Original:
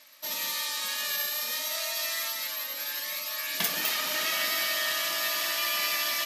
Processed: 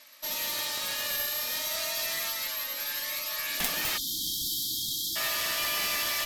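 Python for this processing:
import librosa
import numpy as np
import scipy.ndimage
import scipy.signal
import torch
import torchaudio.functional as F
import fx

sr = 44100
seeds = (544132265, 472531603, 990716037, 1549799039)

y = fx.cheby_harmonics(x, sr, harmonics=(3, 6, 7), levels_db=(-7, -25, -31), full_scale_db=-10.5)
y = fx.spec_erase(y, sr, start_s=3.98, length_s=1.18, low_hz=350.0, high_hz=3100.0)
y = y * librosa.db_to_amplitude(6.5)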